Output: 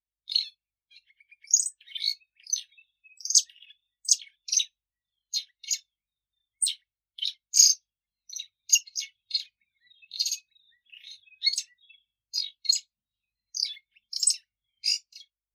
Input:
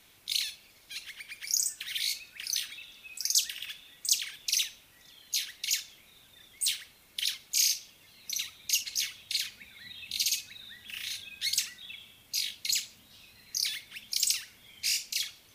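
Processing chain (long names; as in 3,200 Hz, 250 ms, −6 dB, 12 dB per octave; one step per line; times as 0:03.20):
fade-out on the ending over 0.66 s
mains hum 50 Hz, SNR 31 dB
every bin expanded away from the loudest bin 2.5 to 1
level +7 dB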